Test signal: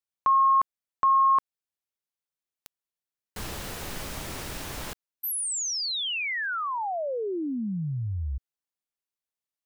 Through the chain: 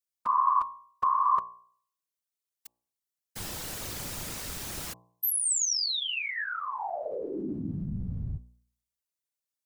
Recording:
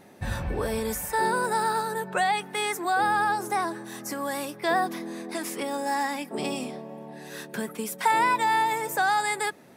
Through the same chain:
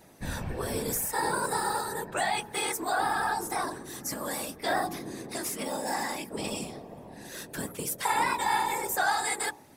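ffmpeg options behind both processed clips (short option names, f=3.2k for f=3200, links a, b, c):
-af "afftfilt=real='hypot(re,im)*cos(2*PI*random(0))':imag='hypot(re,im)*sin(2*PI*random(1))':win_size=512:overlap=0.75,bass=f=250:g=1,treble=f=4k:g=7,bandreject=f=59.96:t=h:w=4,bandreject=f=119.92:t=h:w=4,bandreject=f=179.88:t=h:w=4,bandreject=f=239.84:t=h:w=4,bandreject=f=299.8:t=h:w=4,bandreject=f=359.76:t=h:w=4,bandreject=f=419.72:t=h:w=4,bandreject=f=479.68:t=h:w=4,bandreject=f=539.64:t=h:w=4,bandreject=f=599.6:t=h:w=4,bandreject=f=659.56:t=h:w=4,bandreject=f=719.52:t=h:w=4,bandreject=f=779.48:t=h:w=4,bandreject=f=839.44:t=h:w=4,bandreject=f=899.4:t=h:w=4,bandreject=f=959.36:t=h:w=4,bandreject=f=1.01932k:t=h:w=4,bandreject=f=1.07928k:t=h:w=4,bandreject=f=1.13924k:t=h:w=4,volume=2dB"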